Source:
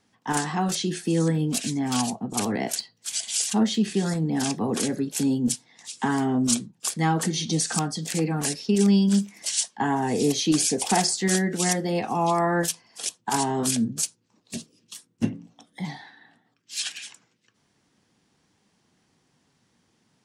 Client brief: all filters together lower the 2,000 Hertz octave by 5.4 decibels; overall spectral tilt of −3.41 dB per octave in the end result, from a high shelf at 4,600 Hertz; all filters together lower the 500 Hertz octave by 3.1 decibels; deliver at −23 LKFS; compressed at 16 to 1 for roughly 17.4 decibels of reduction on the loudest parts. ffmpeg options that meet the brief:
ffmpeg -i in.wav -af "equalizer=frequency=500:width_type=o:gain=-4,equalizer=frequency=2000:width_type=o:gain=-8,highshelf=frequency=4600:gain=7.5,acompressor=threshold=-32dB:ratio=16,volume=12.5dB" out.wav

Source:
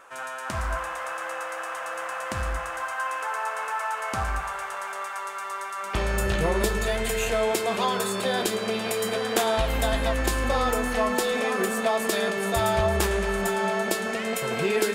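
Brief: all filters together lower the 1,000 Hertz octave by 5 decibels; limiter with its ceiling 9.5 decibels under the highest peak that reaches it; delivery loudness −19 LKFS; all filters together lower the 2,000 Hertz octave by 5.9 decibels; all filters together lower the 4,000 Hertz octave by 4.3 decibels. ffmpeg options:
ffmpeg -i in.wav -af "equalizer=frequency=1000:width_type=o:gain=-5,equalizer=frequency=2000:width_type=o:gain=-5,equalizer=frequency=4000:width_type=o:gain=-3.5,volume=12dB,alimiter=limit=-8dB:level=0:latency=1" out.wav

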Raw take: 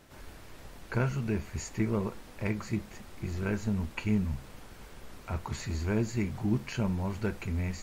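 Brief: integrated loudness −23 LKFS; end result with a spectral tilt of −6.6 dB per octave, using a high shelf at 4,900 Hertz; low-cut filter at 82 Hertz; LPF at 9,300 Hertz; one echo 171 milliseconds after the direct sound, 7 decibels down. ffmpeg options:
ffmpeg -i in.wav -af "highpass=82,lowpass=9300,highshelf=frequency=4900:gain=-6.5,aecho=1:1:171:0.447,volume=10dB" out.wav

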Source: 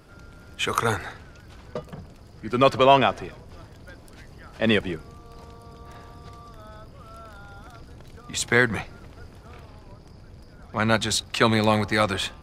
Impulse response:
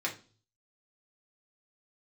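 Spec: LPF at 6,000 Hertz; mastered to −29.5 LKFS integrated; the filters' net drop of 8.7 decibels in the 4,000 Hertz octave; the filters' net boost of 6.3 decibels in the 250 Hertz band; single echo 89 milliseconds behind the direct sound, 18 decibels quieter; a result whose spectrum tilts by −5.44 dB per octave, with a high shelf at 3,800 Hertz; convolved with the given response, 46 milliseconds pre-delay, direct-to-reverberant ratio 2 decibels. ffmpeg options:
-filter_complex "[0:a]lowpass=6000,equalizer=frequency=250:width_type=o:gain=7.5,highshelf=frequency=3800:gain=-8.5,equalizer=frequency=4000:width_type=o:gain=-5.5,aecho=1:1:89:0.126,asplit=2[link_01][link_02];[1:a]atrim=start_sample=2205,adelay=46[link_03];[link_02][link_03]afir=irnorm=-1:irlink=0,volume=-7.5dB[link_04];[link_01][link_04]amix=inputs=2:normalize=0,volume=-10dB"

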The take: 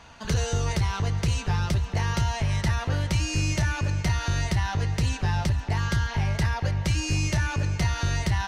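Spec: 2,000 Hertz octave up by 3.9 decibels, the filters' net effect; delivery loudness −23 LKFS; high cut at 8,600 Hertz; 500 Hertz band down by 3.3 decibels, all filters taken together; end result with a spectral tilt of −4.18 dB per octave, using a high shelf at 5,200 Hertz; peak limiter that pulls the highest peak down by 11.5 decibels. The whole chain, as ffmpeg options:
ffmpeg -i in.wav -af "lowpass=8600,equalizer=frequency=500:width_type=o:gain=-4.5,equalizer=frequency=2000:width_type=o:gain=4.5,highshelf=frequency=5200:gain=4.5,volume=10dB,alimiter=limit=-15.5dB:level=0:latency=1" out.wav

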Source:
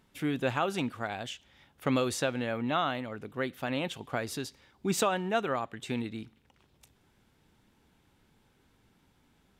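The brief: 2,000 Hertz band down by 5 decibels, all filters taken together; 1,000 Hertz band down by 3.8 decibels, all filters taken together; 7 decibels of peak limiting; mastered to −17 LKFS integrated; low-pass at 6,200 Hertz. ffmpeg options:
ffmpeg -i in.wav -af "lowpass=6200,equalizer=frequency=1000:width_type=o:gain=-4,equalizer=frequency=2000:width_type=o:gain=-5.5,volume=18.5dB,alimiter=limit=-5dB:level=0:latency=1" out.wav

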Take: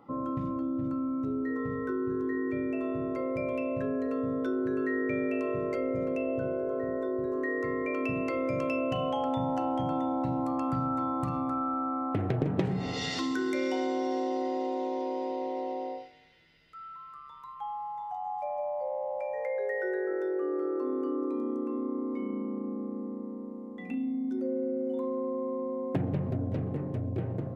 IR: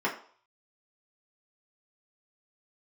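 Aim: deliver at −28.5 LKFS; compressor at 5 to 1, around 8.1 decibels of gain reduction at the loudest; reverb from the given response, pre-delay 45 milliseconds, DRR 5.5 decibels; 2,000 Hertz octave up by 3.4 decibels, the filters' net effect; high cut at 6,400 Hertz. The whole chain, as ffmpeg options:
-filter_complex "[0:a]lowpass=6400,equalizer=frequency=2000:width_type=o:gain=4,acompressor=threshold=-33dB:ratio=5,asplit=2[link_01][link_02];[1:a]atrim=start_sample=2205,adelay=45[link_03];[link_02][link_03]afir=irnorm=-1:irlink=0,volume=-16dB[link_04];[link_01][link_04]amix=inputs=2:normalize=0,volume=7.5dB"

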